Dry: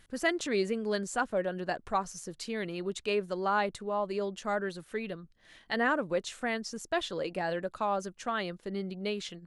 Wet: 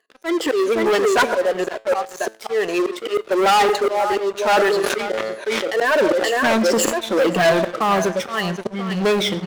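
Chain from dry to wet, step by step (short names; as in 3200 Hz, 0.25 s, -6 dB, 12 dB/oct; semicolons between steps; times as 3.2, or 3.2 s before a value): moving spectral ripple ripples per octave 1.5, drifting -1.9 Hz, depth 18 dB; LPF 1900 Hz 6 dB/oct; high-pass sweep 420 Hz -> 110 Hz, 5.89–8.53; echo 0.523 s -13.5 dB; auto swell 0.386 s; reverb RT60 0.50 s, pre-delay 65 ms, DRR 18 dB; sample leveller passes 5; low shelf 210 Hz -11 dB; resonator 110 Hz, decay 0.36 s, harmonics all, mix 40%; 4.5–6.99 sustainer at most 21 dB/s; gain +6.5 dB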